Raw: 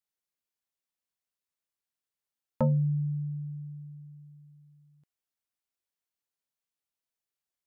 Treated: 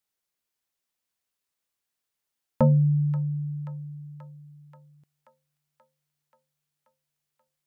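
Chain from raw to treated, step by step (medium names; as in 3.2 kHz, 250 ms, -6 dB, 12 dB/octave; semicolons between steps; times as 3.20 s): on a send: feedback echo behind a high-pass 532 ms, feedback 69%, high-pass 1.5 kHz, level -9 dB; on the sum: trim +6 dB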